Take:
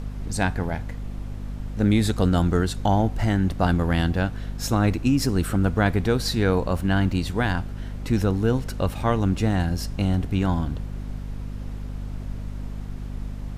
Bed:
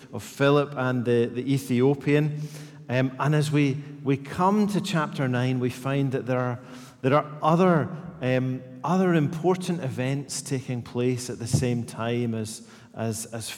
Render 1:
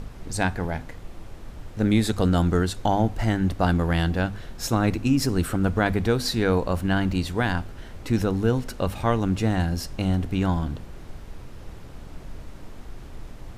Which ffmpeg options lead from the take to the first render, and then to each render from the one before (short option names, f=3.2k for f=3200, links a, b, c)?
-af "bandreject=f=50:t=h:w=6,bandreject=f=100:t=h:w=6,bandreject=f=150:t=h:w=6,bandreject=f=200:t=h:w=6,bandreject=f=250:t=h:w=6"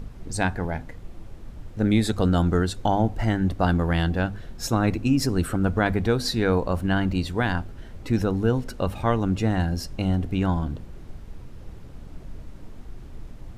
-af "afftdn=nr=6:nf=-41"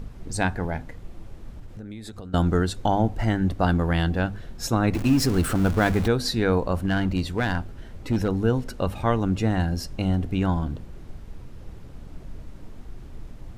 -filter_complex "[0:a]asettb=1/sr,asplit=3[a][b][c];[a]atrim=end=1.564[d];[b]atrim=start=1.56:end=2.34,asetpts=PTS-STARTPTS,afade=t=in:d=0.004:c=qsin,afade=t=out:st=0.776:d=0.004:c=qsin,acompressor=threshold=-34dB:ratio=12:attack=3.2:release=140:knee=1:detection=peak[e];[c]atrim=start=2.336[f];[d][e]acrossfade=d=0.004:c1=hsin:c2=qsin[g];[g][f]acrossfade=d=0.004:c1=qsin:c2=hsin,asettb=1/sr,asplit=3[h][i][j];[h]atrim=end=4.944[k];[i]atrim=start=4.94:end=6.08,asetpts=PTS-STARTPTS,afade=t=in:d=0.004:c=qsin,afade=t=out:st=1.136:d=0.004:c=qsin,aeval=exprs='val(0)+0.5*0.0398*sgn(val(0))':c=same[l];[j]atrim=start=6.076[m];[k][l]acrossfade=d=0.004:c1=hsin:c2=qsin[n];[n][m]acrossfade=d=0.004:c1=qsin:c2=hsin,asettb=1/sr,asplit=3[o][p][q];[o]atrim=end=6.824[r];[p]atrim=start=6.82:end=8.29,asetpts=PTS-STARTPTS,afade=t=in:d=0.004:c=qsin,afade=t=out:st=1.466:d=0.004:c=qsin,asoftclip=type=hard:threshold=-16.5dB[s];[q]atrim=start=8.286[t];[r][s]acrossfade=d=0.004:c1=hsin:c2=qsin[u];[u][t]acrossfade=d=0.004:c1=qsin:c2=hsin"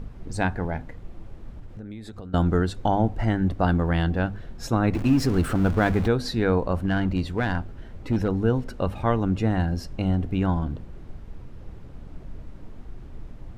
-af "highshelf=f=4.2k:g=-10"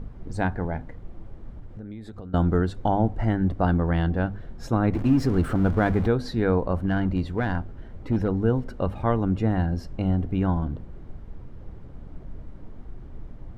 -af "highshelf=f=2.6k:g=-9.5,bandreject=f=2.6k:w=20"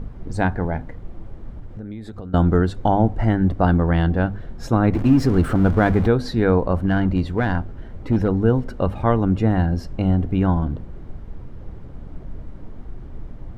-af "volume=5dB"